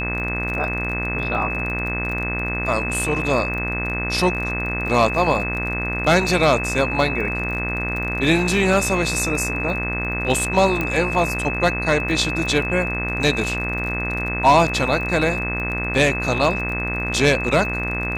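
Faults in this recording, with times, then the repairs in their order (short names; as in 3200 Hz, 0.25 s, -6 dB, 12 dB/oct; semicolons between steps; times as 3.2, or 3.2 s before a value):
buzz 60 Hz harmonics 39 -27 dBFS
crackle 29/s -28 dBFS
tone 2600 Hz -25 dBFS
10.81 pop -10 dBFS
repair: de-click; de-hum 60 Hz, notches 39; notch 2600 Hz, Q 30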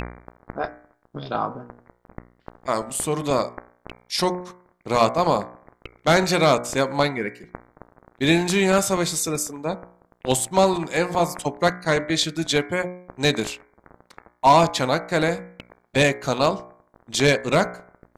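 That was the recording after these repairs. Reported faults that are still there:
none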